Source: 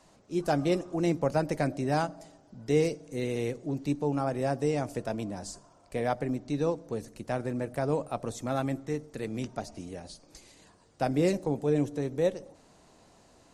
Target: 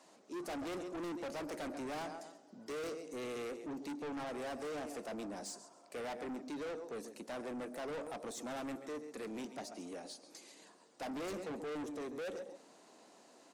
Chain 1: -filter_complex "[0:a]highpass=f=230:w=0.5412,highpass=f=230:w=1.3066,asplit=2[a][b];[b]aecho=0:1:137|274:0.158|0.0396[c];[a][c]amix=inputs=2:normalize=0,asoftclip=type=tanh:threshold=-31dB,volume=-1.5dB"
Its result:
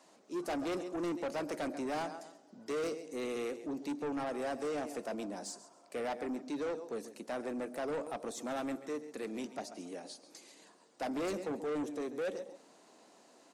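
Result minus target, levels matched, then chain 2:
soft clip: distortion -4 dB
-filter_complex "[0:a]highpass=f=230:w=0.5412,highpass=f=230:w=1.3066,asplit=2[a][b];[b]aecho=0:1:137|274:0.158|0.0396[c];[a][c]amix=inputs=2:normalize=0,asoftclip=type=tanh:threshold=-38dB,volume=-1.5dB"

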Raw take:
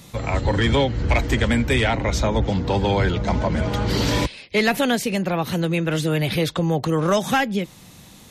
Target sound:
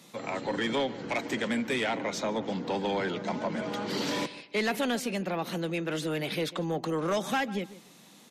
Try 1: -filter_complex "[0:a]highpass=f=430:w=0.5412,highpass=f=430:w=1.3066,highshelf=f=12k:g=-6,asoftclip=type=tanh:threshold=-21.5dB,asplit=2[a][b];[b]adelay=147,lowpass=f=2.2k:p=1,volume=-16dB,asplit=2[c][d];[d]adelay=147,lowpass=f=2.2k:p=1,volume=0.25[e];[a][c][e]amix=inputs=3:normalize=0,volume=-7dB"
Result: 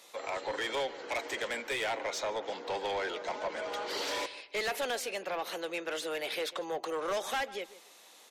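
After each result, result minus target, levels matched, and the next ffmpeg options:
250 Hz band -11.0 dB; soft clip: distortion +7 dB
-filter_complex "[0:a]highpass=f=190:w=0.5412,highpass=f=190:w=1.3066,highshelf=f=12k:g=-6,asoftclip=type=tanh:threshold=-21.5dB,asplit=2[a][b];[b]adelay=147,lowpass=f=2.2k:p=1,volume=-16dB,asplit=2[c][d];[d]adelay=147,lowpass=f=2.2k:p=1,volume=0.25[e];[a][c][e]amix=inputs=3:normalize=0,volume=-7dB"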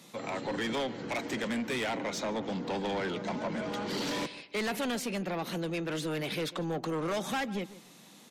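soft clip: distortion +8 dB
-filter_complex "[0:a]highpass=f=190:w=0.5412,highpass=f=190:w=1.3066,highshelf=f=12k:g=-6,asoftclip=type=tanh:threshold=-14dB,asplit=2[a][b];[b]adelay=147,lowpass=f=2.2k:p=1,volume=-16dB,asplit=2[c][d];[d]adelay=147,lowpass=f=2.2k:p=1,volume=0.25[e];[a][c][e]amix=inputs=3:normalize=0,volume=-7dB"

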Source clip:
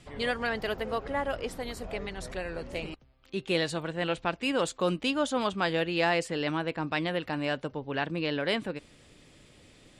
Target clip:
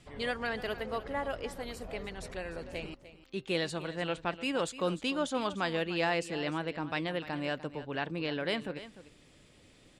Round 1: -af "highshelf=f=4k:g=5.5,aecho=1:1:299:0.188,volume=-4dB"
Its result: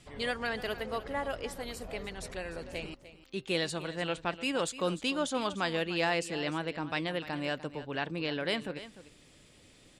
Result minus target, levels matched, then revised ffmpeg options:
8000 Hz band +3.5 dB
-af "aecho=1:1:299:0.188,volume=-4dB"

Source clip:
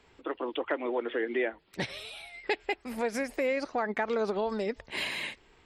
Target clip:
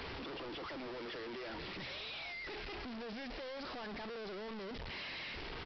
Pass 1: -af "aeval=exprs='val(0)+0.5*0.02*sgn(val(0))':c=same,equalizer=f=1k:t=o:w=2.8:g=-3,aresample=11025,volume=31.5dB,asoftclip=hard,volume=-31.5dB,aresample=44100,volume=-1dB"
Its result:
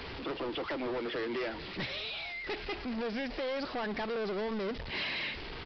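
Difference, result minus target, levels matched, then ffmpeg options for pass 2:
overloaded stage: distortion -6 dB
-af "aeval=exprs='val(0)+0.5*0.02*sgn(val(0))':c=same,equalizer=f=1k:t=o:w=2.8:g=-3,aresample=11025,volume=43dB,asoftclip=hard,volume=-43dB,aresample=44100,volume=-1dB"

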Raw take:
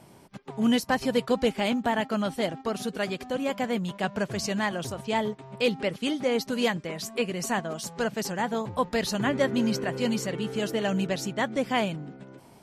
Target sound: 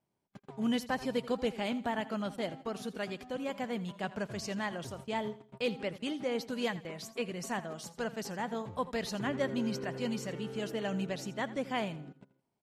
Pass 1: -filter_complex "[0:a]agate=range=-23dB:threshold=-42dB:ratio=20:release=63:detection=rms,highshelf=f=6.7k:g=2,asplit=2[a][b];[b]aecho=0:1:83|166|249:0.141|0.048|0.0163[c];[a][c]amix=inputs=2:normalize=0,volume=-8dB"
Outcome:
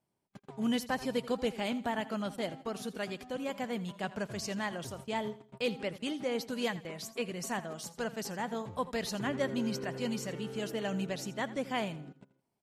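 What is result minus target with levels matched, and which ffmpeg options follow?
8000 Hz band +3.0 dB
-filter_complex "[0:a]agate=range=-23dB:threshold=-42dB:ratio=20:release=63:detection=rms,highshelf=f=6.7k:g=-4,asplit=2[a][b];[b]aecho=0:1:83|166|249:0.141|0.048|0.0163[c];[a][c]amix=inputs=2:normalize=0,volume=-8dB"

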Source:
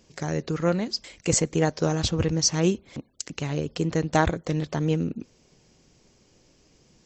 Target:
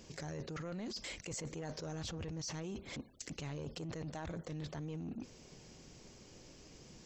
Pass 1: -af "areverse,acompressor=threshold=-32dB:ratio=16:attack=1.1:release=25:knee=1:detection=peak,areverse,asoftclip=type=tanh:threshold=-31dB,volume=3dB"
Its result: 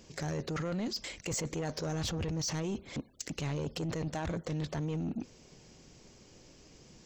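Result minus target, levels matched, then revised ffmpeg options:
compressor: peak gain reduction -10 dB
-af "areverse,acompressor=threshold=-42.5dB:ratio=16:attack=1.1:release=25:knee=1:detection=peak,areverse,asoftclip=type=tanh:threshold=-31dB,volume=3dB"

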